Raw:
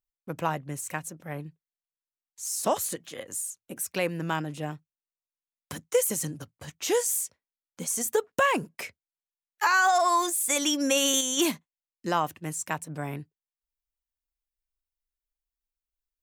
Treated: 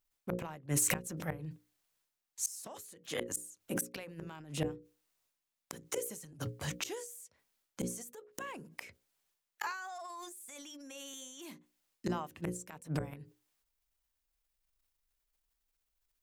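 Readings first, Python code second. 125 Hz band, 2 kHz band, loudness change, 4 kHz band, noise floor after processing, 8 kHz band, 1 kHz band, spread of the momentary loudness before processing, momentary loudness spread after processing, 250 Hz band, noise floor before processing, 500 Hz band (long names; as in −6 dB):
−3.5 dB, −14.5 dB, −12.5 dB, −15.5 dB, below −85 dBFS, −10.5 dB, −18.0 dB, 17 LU, 13 LU, −9.5 dB, below −85 dBFS, −13.5 dB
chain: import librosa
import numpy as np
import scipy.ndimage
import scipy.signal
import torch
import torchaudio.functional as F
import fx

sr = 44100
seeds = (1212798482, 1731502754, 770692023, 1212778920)

y = fx.gate_flip(x, sr, shuts_db=-24.0, range_db=-30)
y = fx.hum_notches(y, sr, base_hz=60, count=9)
y = fx.transient(y, sr, attack_db=-5, sustain_db=9)
y = y * librosa.db_to_amplitude(6.5)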